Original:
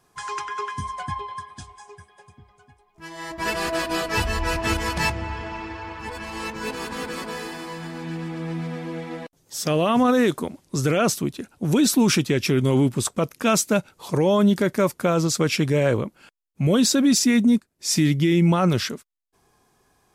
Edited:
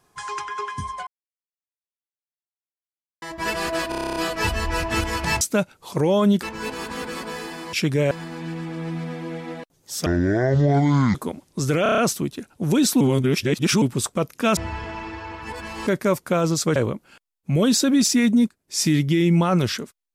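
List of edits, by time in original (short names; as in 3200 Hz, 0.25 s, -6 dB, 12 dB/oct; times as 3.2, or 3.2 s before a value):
1.07–3.22 mute
3.89 stutter 0.03 s, 10 plays
5.14–6.44 swap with 13.58–14.6
9.69–10.31 speed 57%
10.99 stutter 0.03 s, 6 plays
12.02–12.83 reverse
15.49–15.87 move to 7.74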